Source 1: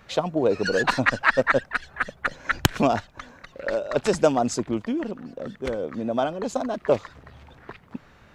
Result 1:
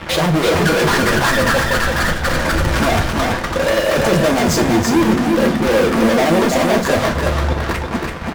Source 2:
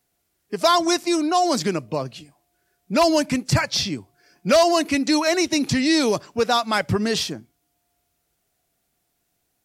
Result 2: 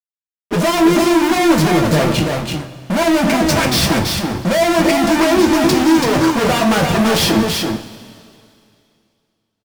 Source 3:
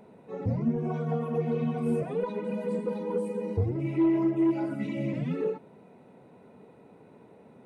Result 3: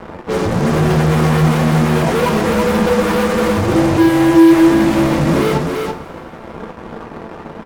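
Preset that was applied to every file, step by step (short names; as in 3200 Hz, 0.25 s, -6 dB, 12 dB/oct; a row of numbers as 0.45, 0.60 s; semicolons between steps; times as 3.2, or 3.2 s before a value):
LPF 1100 Hz 6 dB/oct; de-hum 63.55 Hz, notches 2; in parallel at +2 dB: negative-ratio compressor -30 dBFS, ratio -1; on the sum: fuzz box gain 39 dB, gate -43 dBFS; on a send: echo 0.333 s -4 dB; on the sum: two-slope reverb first 0.25 s, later 2.5 s, from -19 dB, DRR 2 dB; gain -3 dB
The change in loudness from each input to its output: +9.0, +6.0, +16.0 LU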